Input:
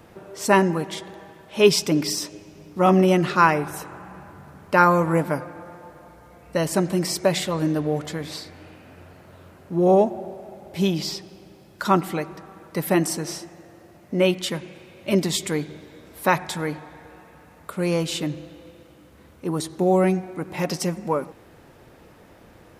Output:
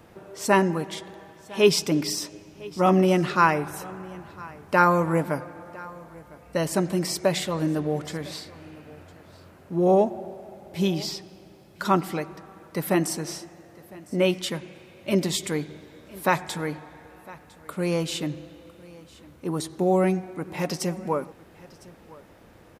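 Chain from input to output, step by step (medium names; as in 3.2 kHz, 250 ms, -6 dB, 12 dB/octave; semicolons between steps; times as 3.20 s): delay 1006 ms -21.5 dB; trim -2.5 dB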